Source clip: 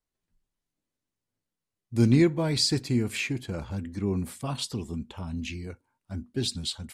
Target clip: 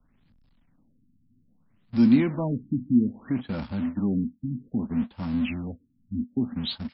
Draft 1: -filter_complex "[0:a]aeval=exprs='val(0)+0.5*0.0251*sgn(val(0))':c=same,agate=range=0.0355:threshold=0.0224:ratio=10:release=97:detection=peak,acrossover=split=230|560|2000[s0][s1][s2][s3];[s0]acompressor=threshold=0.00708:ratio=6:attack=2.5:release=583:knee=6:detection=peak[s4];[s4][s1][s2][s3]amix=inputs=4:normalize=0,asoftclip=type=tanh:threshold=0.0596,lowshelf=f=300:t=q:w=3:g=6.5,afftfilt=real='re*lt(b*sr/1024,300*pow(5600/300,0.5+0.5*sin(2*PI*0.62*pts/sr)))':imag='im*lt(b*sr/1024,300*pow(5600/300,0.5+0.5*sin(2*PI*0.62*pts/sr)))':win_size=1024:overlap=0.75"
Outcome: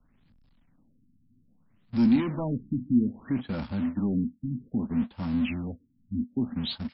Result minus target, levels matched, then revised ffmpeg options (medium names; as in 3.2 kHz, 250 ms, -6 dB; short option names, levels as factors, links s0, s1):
saturation: distortion +11 dB
-filter_complex "[0:a]aeval=exprs='val(0)+0.5*0.0251*sgn(val(0))':c=same,agate=range=0.0355:threshold=0.0224:ratio=10:release=97:detection=peak,acrossover=split=230|560|2000[s0][s1][s2][s3];[s0]acompressor=threshold=0.00708:ratio=6:attack=2.5:release=583:knee=6:detection=peak[s4];[s4][s1][s2][s3]amix=inputs=4:normalize=0,asoftclip=type=tanh:threshold=0.168,lowshelf=f=300:t=q:w=3:g=6.5,afftfilt=real='re*lt(b*sr/1024,300*pow(5600/300,0.5+0.5*sin(2*PI*0.62*pts/sr)))':imag='im*lt(b*sr/1024,300*pow(5600/300,0.5+0.5*sin(2*PI*0.62*pts/sr)))':win_size=1024:overlap=0.75"